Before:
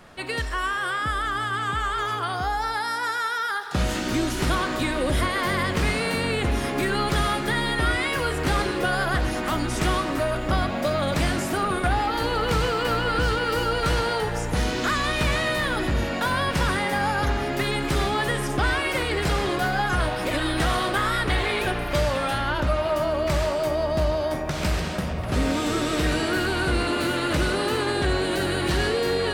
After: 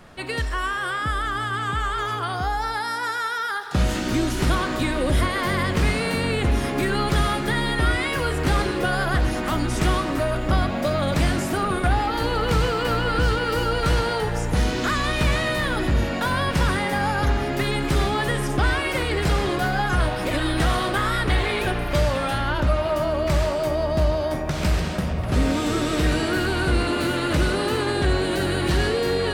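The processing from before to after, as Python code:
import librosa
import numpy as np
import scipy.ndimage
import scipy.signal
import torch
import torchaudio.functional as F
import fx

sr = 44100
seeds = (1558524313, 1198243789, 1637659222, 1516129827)

y = fx.low_shelf(x, sr, hz=260.0, db=4.5)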